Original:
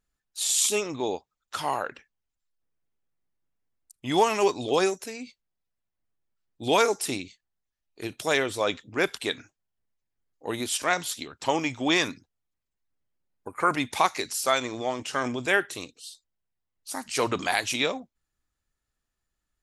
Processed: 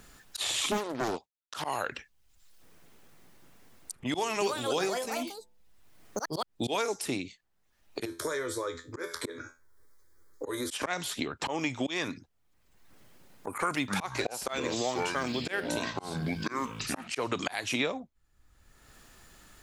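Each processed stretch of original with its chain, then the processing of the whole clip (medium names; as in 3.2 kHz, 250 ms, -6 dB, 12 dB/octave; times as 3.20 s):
0.71–1.62 s: expander -55 dBFS + loudspeaker Doppler distortion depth 0.87 ms
4.07–6.77 s: de-hum 70.65 Hz, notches 8 + ever faster or slower copies 335 ms, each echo +5 st, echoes 2, each echo -6 dB
8.05–10.71 s: compression 4:1, threshold -30 dBFS + static phaser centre 740 Hz, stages 6 + feedback comb 84 Hz, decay 0.23 s, mix 80%
13.75–17.08 s: companded quantiser 8-bit + ever faster or slower copies 129 ms, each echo -7 st, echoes 2, each echo -6 dB
whole clip: treble shelf 3.9 kHz -2 dB; slow attack 296 ms; three bands compressed up and down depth 100%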